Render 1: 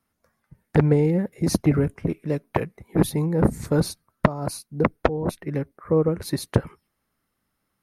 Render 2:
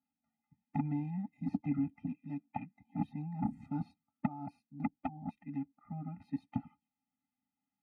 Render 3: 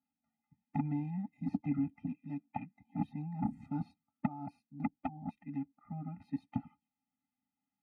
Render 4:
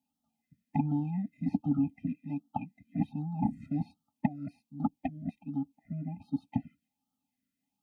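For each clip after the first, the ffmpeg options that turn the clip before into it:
-filter_complex "[0:a]acrossover=split=2700[a][b];[b]acompressor=threshold=-49dB:ratio=4:attack=1:release=60[c];[a][c]amix=inputs=2:normalize=0,asplit=3[d][e][f];[d]bandpass=f=300:t=q:w=8,volume=0dB[g];[e]bandpass=f=870:t=q:w=8,volume=-6dB[h];[f]bandpass=f=2.24k:t=q:w=8,volume=-9dB[i];[g][h][i]amix=inputs=3:normalize=0,afftfilt=real='re*eq(mod(floor(b*sr/1024/300),2),0)':imag='im*eq(mod(floor(b*sr/1024/300),2),0)':win_size=1024:overlap=0.75,volume=2.5dB"
-af anull
-af "afftfilt=real='re*(1-between(b*sr/1024,930*pow(2000/930,0.5+0.5*sin(2*PI*1.3*pts/sr))/1.41,930*pow(2000/930,0.5+0.5*sin(2*PI*1.3*pts/sr))*1.41))':imag='im*(1-between(b*sr/1024,930*pow(2000/930,0.5+0.5*sin(2*PI*1.3*pts/sr))/1.41,930*pow(2000/930,0.5+0.5*sin(2*PI*1.3*pts/sr))*1.41))':win_size=1024:overlap=0.75,volume=5dB"

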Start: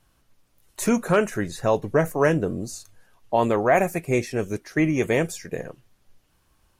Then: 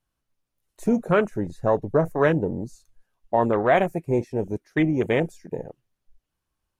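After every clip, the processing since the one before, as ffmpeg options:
-af "afwtdn=0.0447"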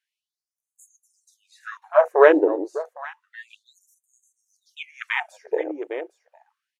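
-af "aemphasis=mode=reproduction:type=75kf,aecho=1:1:809:0.168,afftfilt=real='re*gte(b*sr/1024,280*pow(6400/280,0.5+0.5*sin(2*PI*0.3*pts/sr)))':imag='im*gte(b*sr/1024,280*pow(6400/280,0.5+0.5*sin(2*PI*0.3*pts/sr)))':win_size=1024:overlap=0.75,volume=8.5dB"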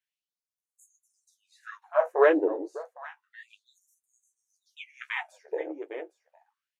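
-af "flanger=delay=9.5:depth=5.5:regen=-35:speed=1.7:shape=sinusoidal,volume=-3.5dB"

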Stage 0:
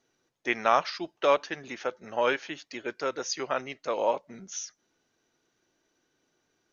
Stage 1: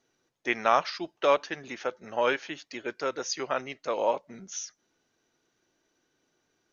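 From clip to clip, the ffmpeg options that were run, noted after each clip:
-af anull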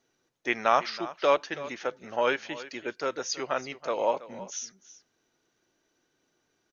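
-af "aecho=1:1:327:0.158"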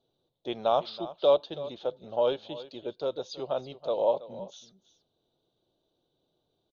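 -af "firequalizer=gain_entry='entry(150,0);entry(250,-7);entry(580,0);entry(1900,-30);entry(3600,2);entry(5600,-23);entry(9000,-16)':delay=0.05:min_phase=1,volume=3dB"

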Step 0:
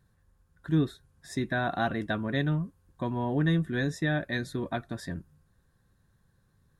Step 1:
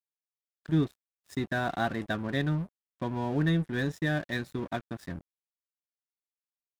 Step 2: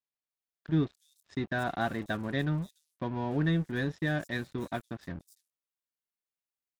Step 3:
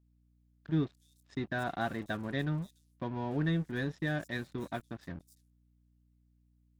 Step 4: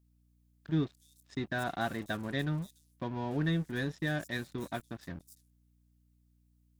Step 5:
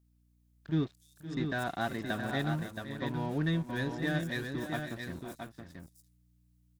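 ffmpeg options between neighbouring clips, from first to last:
-af "aeval=exprs='sgn(val(0))*max(abs(val(0))-0.00668,0)':c=same"
-filter_complex "[0:a]acrossover=split=5900[a][b];[b]adelay=290[c];[a][c]amix=inputs=2:normalize=0,volume=-1.5dB"
-af "aeval=exprs='val(0)+0.000631*(sin(2*PI*60*n/s)+sin(2*PI*2*60*n/s)/2+sin(2*PI*3*60*n/s)/3+sin(2*PI*4*60*n/s)/4+sin(2*PI*5*60*n/s)/5)':c=same,volume=-3dB"
-af "highshelf=f=4.7k:g=8.5"
-af "aecho=1:1:515|551|673:0.211|0.224|0.501"

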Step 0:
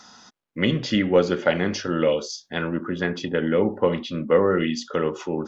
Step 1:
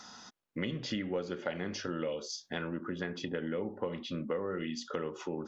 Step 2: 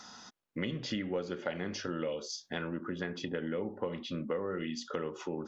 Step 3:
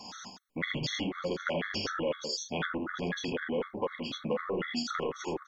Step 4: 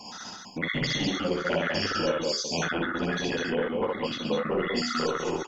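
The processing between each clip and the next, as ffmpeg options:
-af "acompressor=threshold=-32dB:ratio=4,volume=-2.5dB"
-af anull
-filter_complex "[0:a]acrossover=split=620|2300[a][b][c];[a]asoftclip=type=tanh:threshold=-39.5dB[d];[d][b][c]amix=inputs=3:normalize=0,aecho=1:1:47|79:0.355|0.668,afftfilt=real='re*gt(sin(2*PI*4*pts/sr)*(1-2*mod(floor(b*sr/1024/1100),2)),0)':imag='im*gt(sin(2*PI*4*pts/sr)*(1-2*mod(floor(b*sr/1024/1100),2)),0)':win_size=1024:overlap=0.75,volume=7.5dB"
-af "aecho=1:1:61.22|201.2:0.794|0.794,volume=2.5dB"

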